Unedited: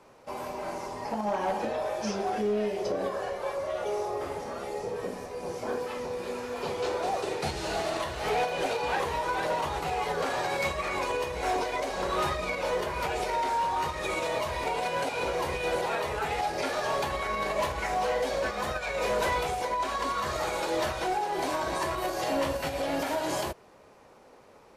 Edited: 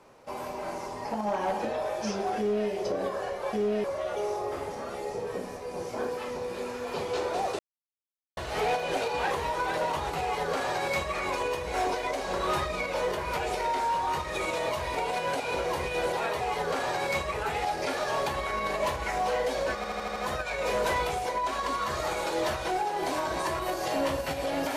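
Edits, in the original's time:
2.38–2.69 s: copy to 3.53 s
7.28–8.06 s: mute
9.91–10.84 s: copy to 16.10 s
18.52 s: stutter 0.08 s, 6 plays

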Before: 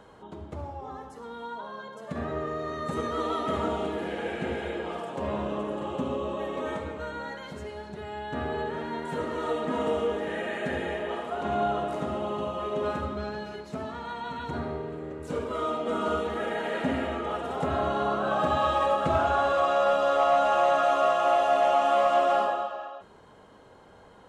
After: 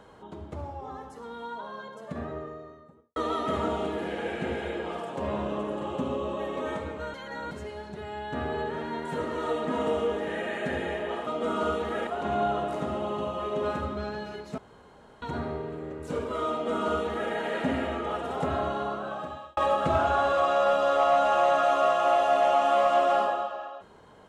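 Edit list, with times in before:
1.76–3.16 s: studio fade out
7.14–7.51 s: reverse
13.78–14.42 s: room tone
15.72–16.52 s: copy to 11.27 s
17.62–18.77 s: fade out

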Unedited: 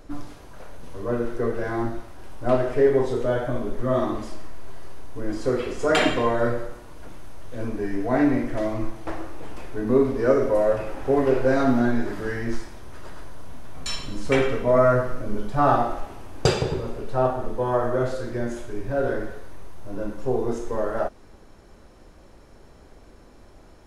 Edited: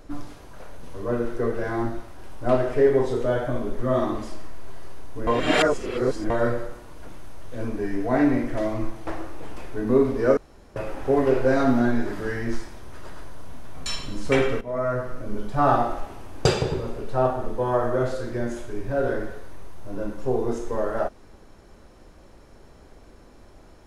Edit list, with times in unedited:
5.27–6.30 s: reverse
10.37–10.76 s: room tone
14.61–16.00 s: fade in equal-power, from -15 dB

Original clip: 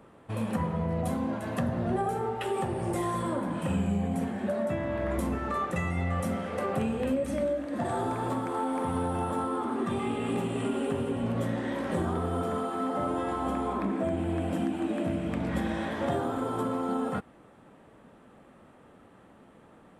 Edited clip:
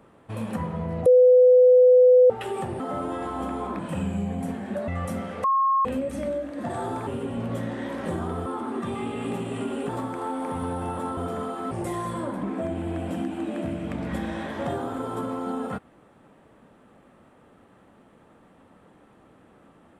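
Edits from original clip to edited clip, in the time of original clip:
1.06–2.30 s: bleep 502 Hz -11 dBFS
2.80–3.52 s: swap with 12.86–13.85 s
4.61–6.03 s: delete
6.59–7.00 s: bleep 1.08 kHz -18 dBFS
8.22–9.50 s: swap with 10.93–12.32 s

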